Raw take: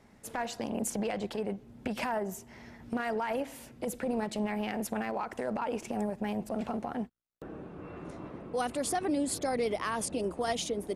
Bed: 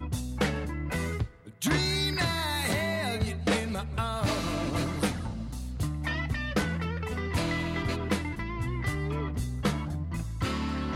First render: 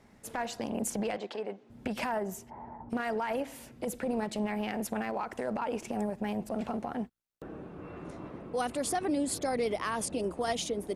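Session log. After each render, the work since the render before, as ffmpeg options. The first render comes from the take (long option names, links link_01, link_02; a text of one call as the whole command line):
ffmpeg -i in.wav -filter_complex "[0:a]asplit=3[link_01][link_02][link_03];[link_01]afade=type=out:start_time=1.16:duration=0.02[link_04];[link_02]highpass=350,lowpass=5500,afade=type=in:start_time=1.16:duration=0.02,afade=type=out:start_time=1.69:duration=0.02[link_05];[link_03]afade=type=in:start_time=1.69:duration=0.02[link_06];[link_04][link_05][link_06]amix=inputs=3:normalize=0,asplit=3[link_07][link_08][link_09];[link_07]afade=type=out:start_time=2.49:duration=0.02[link_10];[link_08]lowpass=frequency=890:width_type=q:width=7.7,afade=type=in:start_time=2.49:duration=0.02,afade=type=out:start_time=2.89:duration=0.02[link_11];[link_09]afade=type=in:start_time=2.89:duration=0.02[link_12];[link_10][link_11][link_12]amix=inputs=3:normalize=0" out.wav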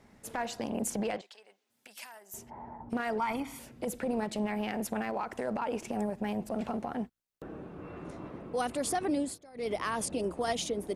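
ffmpeg -i in.wav -filter_complex "[0:a]asettb=1/sr,asplit=3[link_01][link_02][link_03];[link_01]atrim=end=1.214[link_04];[link_02]atrim=start=1.21:end=2.34,asetpts=PTS-STARTPTS,afade=type=in:duration=0.004:curve=qsin,afade=type=out:start_time=1.126:duration=0.004:curve=qsin,aderivative[link_05];[link_03]atrim=start=2.336[link_06];[link_04][link_05]acrossfade=duration=0.004:curve1=hsin:curve2=qsin[link_07];[link_07][link_06]acrossfade=duration=0.004:curve1=qsin:curve2=hsin,asettb=1/sr,asplit=3[link_08][link_09][link_10];[link_08]atrim=end=3.184[link_11];[link_09]atrim=start=3.18:end=3.59,asetpts=PTS-STARTPTS,afade=type=in:duration=0.004:curve=qsin,afade=type=out:start_time=0.406:duration=0.004:curve=qsin,aecho=1:1:0.9:0.78,atrim=end_sample=18081[link_12];[link_10]atrim=start=3.586[link_13];[link_11][link_12]acrossfade=duration=0.004:curve1=hsin:curve2=qsin[link_14];[link_14][link_13]acrossfade=duration=0.004:curve1=qsin:curve2=hsin,asplit=3[link_15][link_16][link_17];[link_15]atrim=end=9.38,asetpts=PTS-STARTPTS,afade=type=out:start_time=9.13:duration=0.25:curve=qsin:silence=0.0794328[link_18];[link_16]atrim=start=9.38:end=9.54,asetpts=PTS-STARTPTS,volume=-22dB[link_19];[link_17]atrim=start=9.54,asetpts=PTS-STARTPTS,afade=type=in:duration=0.25:curve=qsin:silence=0.0794328[link_20];[link_18][link_19][link_20]concat=n=3:v=0:a=1" out.wav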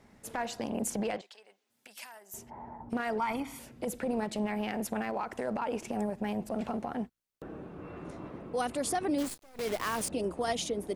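ffmpeg -i in.wav -filter_complex "[0:a]asettb=1/sr,asplit=3[link_01][link_02][link_03];[link_01]atrim=end=9.184[link_04];[link_02]atrim=start=9.18:end=10.09,asetpts=PTS-STARTPTS,afade=type=in:duration=0.004:curve=qsin,afade=type=out:start_time=0.906:duration=0.004:curve=qsin,acrusher=bits=7:dc=4:mix=0:aa=0.000001[link_05];[link_03]atrim=start=10.086[link_06];[link_04][link_05]acrossfade=duration=0.004:curve1=hsin:curve2=qsin[link_07];[link_07][link_06]acrossfade=duration=0.004:curve1=qsin:curve2=hsin" out.wav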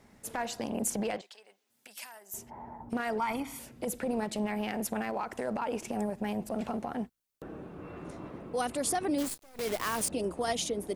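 ffmpeg -i in.wav -af "highshelf=frequency=6500:gain=5.5" out.wav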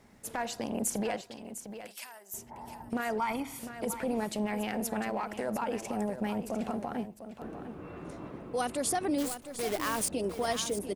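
ffmpeg -i in.wav -af "aecho=1:1:703:0.282" out.wav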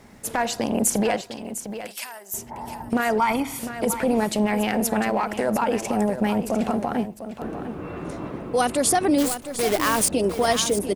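ffmpeg -i in.wav -af "volume=10.5dB" out.wav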